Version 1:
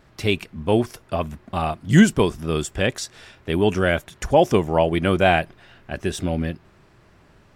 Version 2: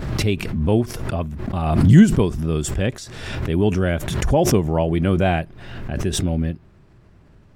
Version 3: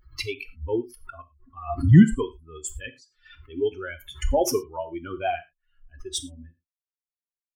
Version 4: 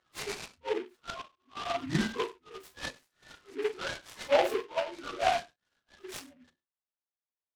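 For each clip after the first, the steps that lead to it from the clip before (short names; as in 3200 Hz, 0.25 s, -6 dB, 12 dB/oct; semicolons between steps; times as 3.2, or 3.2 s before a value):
low shelf 350 Hz +12 dB; backwards sustainer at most 41 dB/s; gain -6.5 dB
per-bin expansion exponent 3; non-linear reverb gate 0.13 s falling, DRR 9.5 dB
phase scrambler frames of 0.1 s; BPF 600–2100 Hz; noise-modulated delay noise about 1800 Hz, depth 0.088 ms; gain +1.5 dB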